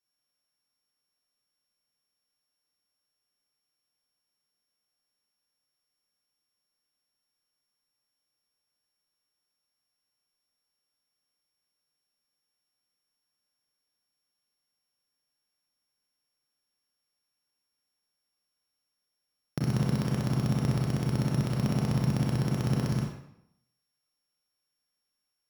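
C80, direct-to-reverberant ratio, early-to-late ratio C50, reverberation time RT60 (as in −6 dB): 5.5 dB, −2.0 dB, 2.5 dB, 0.80 s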